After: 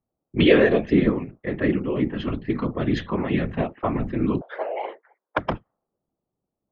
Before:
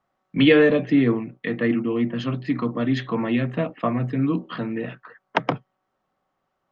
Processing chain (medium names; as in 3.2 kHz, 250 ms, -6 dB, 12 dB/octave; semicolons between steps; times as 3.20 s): 4.41–5.37 s: frequency shift +340 Hz; level-controlled noise filter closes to 360 Hz, open at -18 dBFS; whisper effect; trim -1 dB